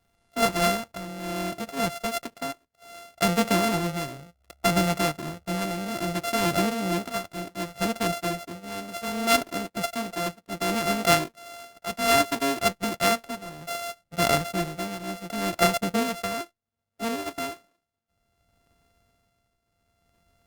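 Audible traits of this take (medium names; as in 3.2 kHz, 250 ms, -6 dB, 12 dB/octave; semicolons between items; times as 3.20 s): a buzz of ramps at a fixed pitch in blocks of 64 samples; tremolo triangle 0.65 Hz, depth 75%; Opus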